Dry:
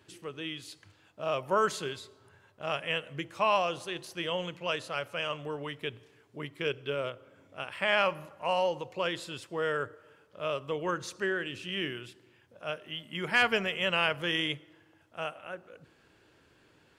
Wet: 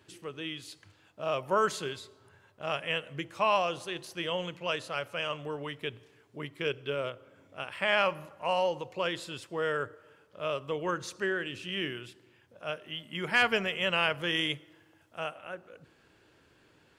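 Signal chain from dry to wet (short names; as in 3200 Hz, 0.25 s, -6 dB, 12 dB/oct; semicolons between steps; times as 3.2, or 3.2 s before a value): 14.36–15.19 high shelf 5700 Hz +5.5 dB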